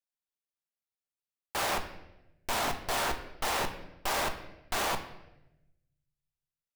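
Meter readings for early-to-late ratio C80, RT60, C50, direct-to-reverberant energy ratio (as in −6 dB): 13.0 dB, 0.95 s, 10.5 dB, 5.0 dB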